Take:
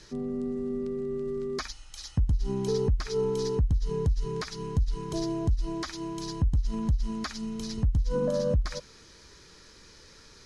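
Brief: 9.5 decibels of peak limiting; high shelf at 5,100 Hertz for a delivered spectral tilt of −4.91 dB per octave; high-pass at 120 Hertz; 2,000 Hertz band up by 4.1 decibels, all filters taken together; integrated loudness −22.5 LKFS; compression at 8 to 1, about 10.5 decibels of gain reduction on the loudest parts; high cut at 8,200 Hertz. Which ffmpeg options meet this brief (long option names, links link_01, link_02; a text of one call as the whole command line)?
ffmpeg -i in.wav -af "highpass=120,lowpass=8200,equalizer=frequency=2000:width_type=o:gain=4.5,highshelf=frequency=5100:gain=5,acompressor=threshold=-35dB:ratio=8,volume=19.5dB,alimiter=limit=-13dB:level=0:latency=1" out.wav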